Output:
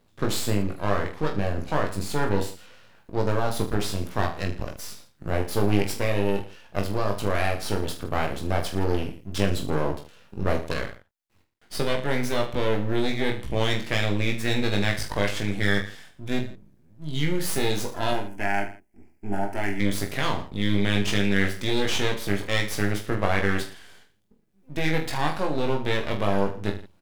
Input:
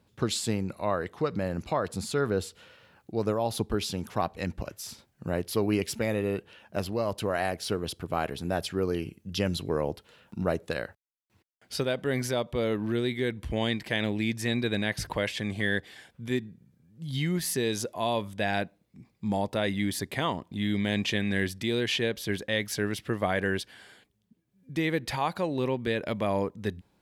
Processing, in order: half-wave rectifier; 18.11–19.8 fixed phaser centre 760 Hz, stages 8; reverse bouncing-ball echo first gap 20 ms, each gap 1.25×, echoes 5; gain +4 dB

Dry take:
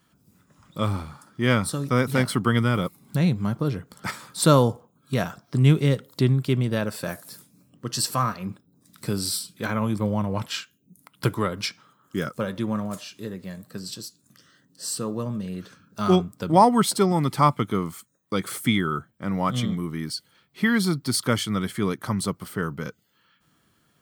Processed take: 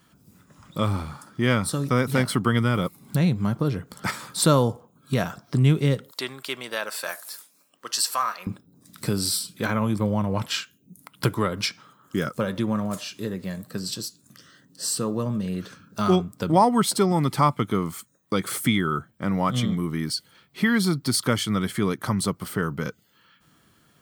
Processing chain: 6.11–8.47 HPF 810 Hz 12 dB/oct; compressor 1.5:1, threshold -31 dBFS, peak gain reduction 7.5 dB; gain +5 dB

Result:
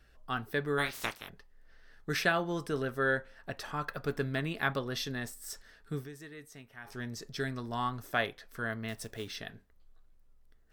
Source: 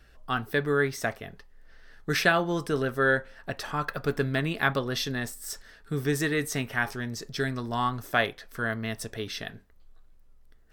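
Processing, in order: 0.77–1.28 spectral limiter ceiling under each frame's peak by 27 dB; 5.95–6.98 dip -15 dB, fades 0.14 s; 8.88–9.36 short-mantissa float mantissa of 2-bit; gain -6 dB

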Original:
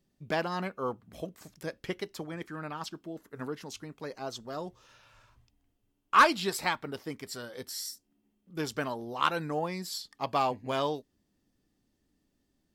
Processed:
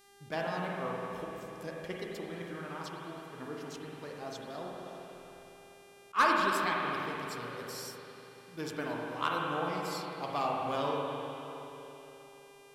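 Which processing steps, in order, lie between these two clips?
buzz 400 Hz, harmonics 32, -56 dBFS -3 dB/oct; spring tank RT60 3.5 s, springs 41/50 ms, chirp 65 ms, DRR -2.5 dB; attack slew limiter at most 430 dB/s; gain -6.5 dB

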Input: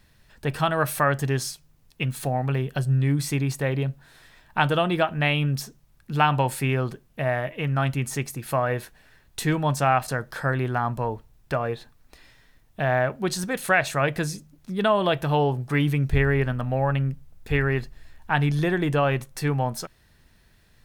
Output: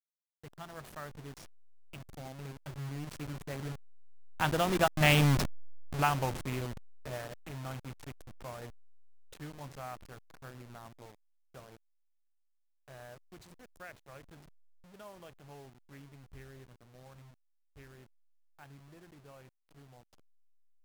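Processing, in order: level-crossing sampler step -22.5 dBFS; Doppler pass-by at 5.24, 13 m/s, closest 4.4 m

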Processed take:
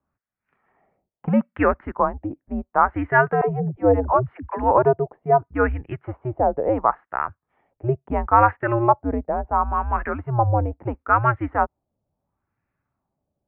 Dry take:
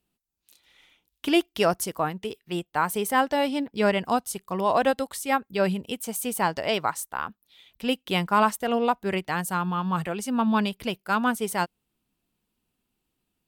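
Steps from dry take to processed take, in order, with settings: 3.41–4.71 dispersion lows, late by 0.106 s, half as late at 340 Hz; mistuned SSB -120 Hz 160–2400 Hz; LFO low-pass sine 0.73 Hz 600–1800 Hz; gain +2.5 dB

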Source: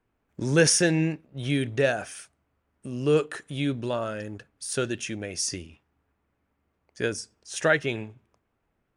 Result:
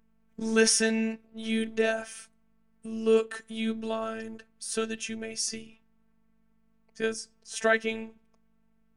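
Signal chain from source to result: hum 50 Hz, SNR 35 dB; robotiser 223 Hz

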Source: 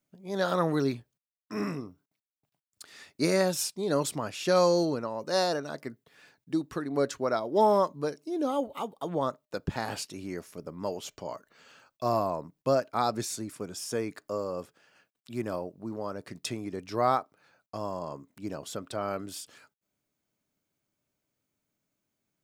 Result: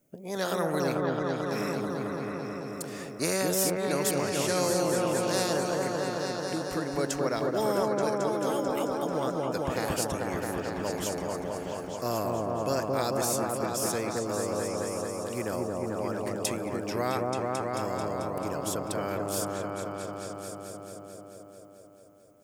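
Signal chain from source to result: graphic EQ 500/1000/2000/4000 Hz +7/-7/-4/-11 dB; on a send: repeats that get brighter 0.22 s, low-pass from 750 Hz, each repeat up 1 oct, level 0 dB; on the sum: spectral compressor 2:1; gain -6 dB

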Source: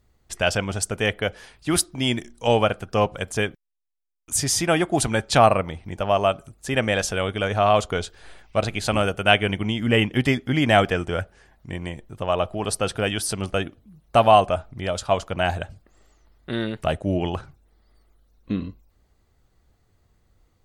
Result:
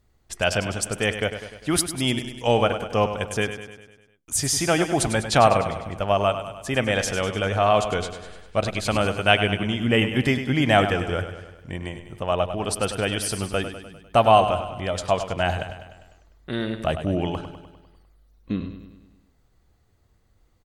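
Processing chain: feedback echo 0.1 s, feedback 57%, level -10 dB; gain -1 dB

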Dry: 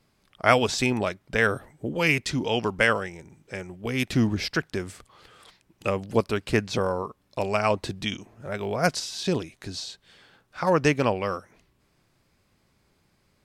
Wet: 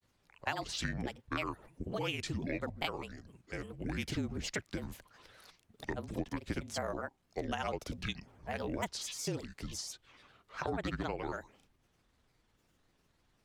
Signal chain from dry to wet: grains, spray 38 ms, pitch spread up and down by 7 st; frequency shift -38 Hz; compressor 6:1, threshold -28 dBFS, peak gain reduction 13.5 dB; gain -5 dB

